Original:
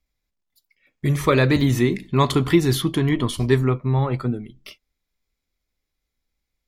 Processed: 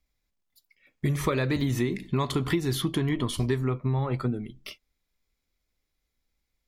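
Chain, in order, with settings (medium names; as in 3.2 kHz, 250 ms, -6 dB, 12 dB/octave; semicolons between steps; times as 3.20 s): compression 6:1, threshold -23 dBFS, peak gain reduction 12 dB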